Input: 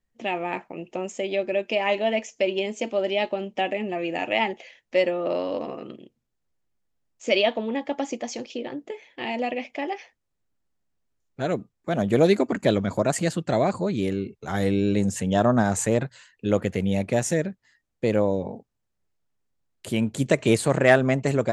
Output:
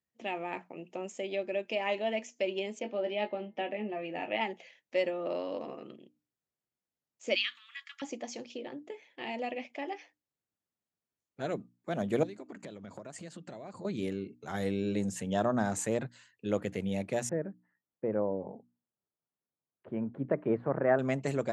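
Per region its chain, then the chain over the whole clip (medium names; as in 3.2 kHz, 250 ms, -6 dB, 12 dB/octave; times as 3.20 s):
2.79–4.41 s: distance through air 190 m + doubling 19 ms -7 dB + de-hum 162.2 Hz, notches 13
7.35–8.02 s: steep high-pass 1.2 kHz 72 dB/octave + treble shelf 2.3 kHz +6 dB
12.23–13.85 s: low-pass 9 kHz 24 dB/octave + compression 20:1, threshold -31 dBFS
17.29–20.99 s: low-pass 1.5 kHz 24 dB/octave + bass shelf 82 Hz -9 dB
whole clip: high-pass 110 Hz; hum notches 60/120/180/240/300 Hz; trim -8.5 dB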